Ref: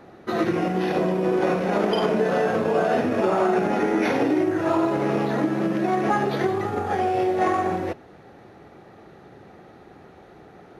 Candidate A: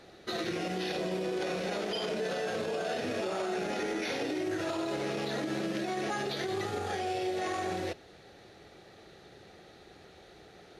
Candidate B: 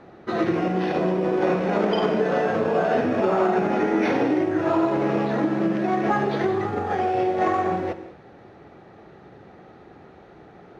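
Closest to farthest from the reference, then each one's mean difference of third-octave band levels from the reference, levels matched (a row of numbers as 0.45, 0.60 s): B, A; 2.0, 5.5 dB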